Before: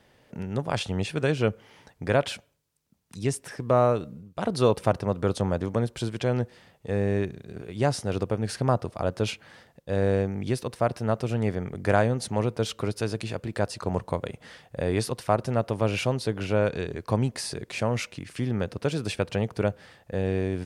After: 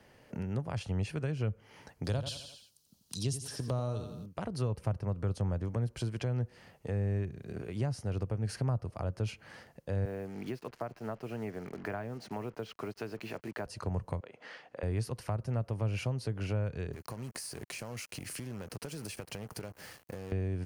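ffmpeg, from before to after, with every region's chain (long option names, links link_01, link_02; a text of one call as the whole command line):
ffmpeg -i in.wav -filter_complex "[0:a]asettb=1/sr,asplit=3[link_01][link_02][link_03];[link_01]atrim=end=2.044[link_04];[link_02]atrim=start=2.04:end=4.26,asetpts=PTS-STARTPTS,afade=type=in:duration=0.004:curve=qsin,afade=type=out:start_time=2.216:duration=0.004:curve=qsin,highshelf=frequency=2800:width_type=q:width=3:gain=9,aecho=1:1:85|170|255|340:0.316|0.117|0.0433|0.016,atrim=end_sample=97902[link_05];[link_03]atrim=start=4.256[link_06];[link_04][link_05]acrossfade=duration=0.004:curve1=hsin:curve2=qsin[link_07];[link_07][link_06]acrossfade=duration=0.004:curve1=qsin:curve2=hsin,asettb=1/sr,asplit=3[link_08][link_09][link_10];[link_08]atrim=end=10.054[link_11];[link_09]atrim=start=10.05:end=13.66,asetpts=PTS-STARTPTS,afade=type=in:duration=0.004:curve=qsin,afade=type=out:start_time=3.606:duration=0.004:curve=qsin,highpass=250,lowpass=3400,bandreject=frequency=520:width=8.8,acrusher=bits=7:mix=0:aa=0.5[link_12];[link_10]atrim=start=13.656[link_13];[link_11][link_12]acrossfade=duration=0.004:curve1=hsin:curve2=qsin[link_14];[link_14][link_13]acrossfade=duration=0.004:curve1=qsin:curve2=hsin,asettb=1/sr,asplit=3[link_15][link_16][link_17];[link_15]atrim=end=14.204[link_18];[link_16]atrim=start=14.2:end=14.83,asetpts=PTS-STARTPTS,afade=type=in:duration=0.004:curve=qsin,afade=type=out:start_time=0.626:duration=0.004:curve=qsin,acompressor=threshold=-37dB:ratio=2:attack=3.2:release=140:knee=1:detection=peak,aeval=exprs='val(0)+0.00126*(sin(2*PI*60*n/s)+sin(2*PI*2*60*n/s)/2+sin(2*PI*3*60*n/s)/3+sin(2*PI*4*60*n/s)/4+sin(2*PI*5*60*n/s)/5)':channel_layout=same,highpass=390,lowpass=4200[link_19];[link_17]atrim=start=14.826[link_20];[link_18][link_19]acrossfade=duration=0.004:curve1=hsin:curve2=qsin[link_21];[link_21][link_20]acrossfade=duration=0.004:curve1=qsin:curve2=hsin,asettb=1/sr,asplit=3[link_22][link_23][link_24];[link_22]atrim=end=16.934[link_25];[link_23]atrim=start=16.93:end=20.32,asetpts=PTS-STARTPTS,afade=type=in:duration=0.004:curve=qsin,afade=type=out:start_time=3.386:duration=0.004:curve=qsin,aemphasis=mode=production:type=50fm,acompressor=threshold=-36dB:ratio=20:attack=3.2:release=140:knee=1:detection=peak,acrusher=bits=7:mix=0:aa=0.5[link_26];[link_24]atrim=start=20.316[link_27];[link_25][link_26]acrossfade=duration=0.004:curve1=hsin:curve2=qsin[link_28];[link_28][link_27]acrossfade=duration=0.004:curve1=qsin:curve2=hsin,equalizer=frequency=3600:width=7.6:gain=-10,bandreject=frequency=7700:width=14,acrossover=split=130[link_29][link_30];[link_30]acompressor=threshold=-37dB:ratio=6[link_31];[link_29][link_31]amix=inputs=2:normalize=0" out.wav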